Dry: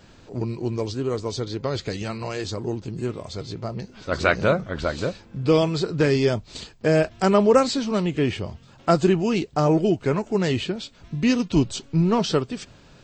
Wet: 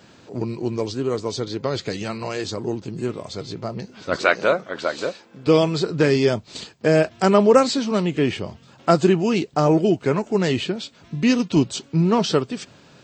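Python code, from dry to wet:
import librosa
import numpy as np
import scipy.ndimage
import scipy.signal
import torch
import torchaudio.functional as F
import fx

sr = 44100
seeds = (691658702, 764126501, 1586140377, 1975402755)

y = fx.highpass(x, sr, hz=fx.steps((0.0, 130.0), (4.16, 350.0), (5.47, 130.0)), slope=12)
y = y * librosa.db_to_amplitude(2.5)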